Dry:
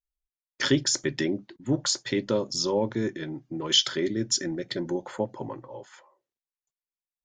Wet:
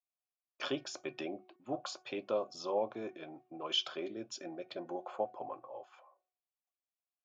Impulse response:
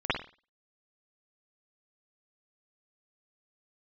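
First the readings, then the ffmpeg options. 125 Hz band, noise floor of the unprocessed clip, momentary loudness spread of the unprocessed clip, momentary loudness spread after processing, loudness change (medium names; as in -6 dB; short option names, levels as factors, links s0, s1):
-23.0 dB, under -85 dBFS, 14 LU, 13 LU, -12.5 dB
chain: -filter_complex "[0:a]asplit=3[s0][s1][s2];[s0]bandpass=f=730:t=q:w=8,volume=1[s3];[s1]bandpass=f=1090:t=q:w=8,volume=0.501[s4];[s2]bandpass=f=2440:t=q:w=8,volume=0.355[s5];[s3][s4][s5]amix=inputs=3:normalize=0,bandreject=f=368.4:t=h:w=4,bandreject=f=736.8:t=h:w=4,bandreject=f=1105.2:t=h:w=4,bandreject=f=1473.6:t=h:w=4,bandreject=f=1842:t=h:w=4,bandreject=f=2210.4:t=h:w=4,volume=2"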